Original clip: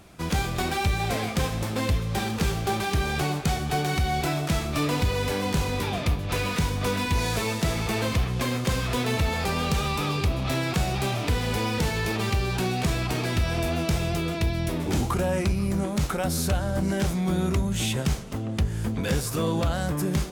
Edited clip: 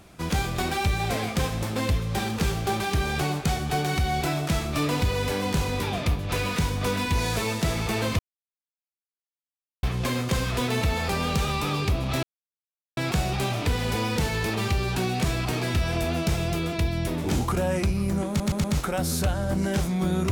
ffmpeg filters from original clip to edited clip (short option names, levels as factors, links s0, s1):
-filter_complex "[0:a]asplit=6[s0][s1][s2][s3][s4][s5];[s0]atrim=end=8.19,asetpts=PTS-STARTPTS,afade=t=out:st=8.186:d=0.004:c=hsin,apad=pad_dur=1.64[s6];[s1]atrim=start=8.19:end=10.59,asetpts=PTS-STARTPTS,afade=t=in:d=0.004:c=hsin,afade=t=out:st=2.396:d=0.004:c=hsin,apad=pad_dur=0.74[s7];[s2]atrim=start=10.59:end=16.022,asetpts=PTS-STARTPTS,afade=t=in:d=0.004:c=hsin[s8];[s3]atrim=start=15.898:end=16.022[s9];[s4]atrim=start=15.898:end=16.022[s10];[s5]atrim=start=15.898[s11];[s6][s7][s8]concat=n=3:v=0:a=1[s12];[s12][s9]acrossfade=d=0.004:c1=hsin:c2=hsin[s13];[s13][s10]acrossfade=d=0.004:c1=hsin:c2=hsin[s14];[s14][s11]acrossfade=d=0.004:c1=hsin:c2=hsin"